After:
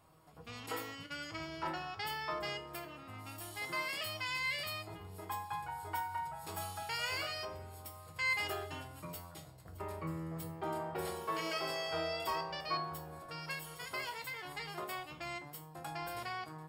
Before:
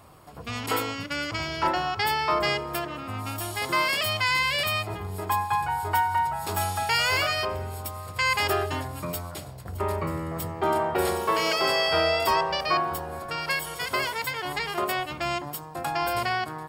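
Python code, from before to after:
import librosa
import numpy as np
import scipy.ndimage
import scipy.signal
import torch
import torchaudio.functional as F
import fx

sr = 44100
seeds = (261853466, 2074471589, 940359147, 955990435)

y = fx.comb_fb(x, sr, f0_hz=160.0, decay_s=0.33, harmonics='all', damping=0.0, mix_pct=80)
y = y * librosa.db_to_amplitude(-4.0)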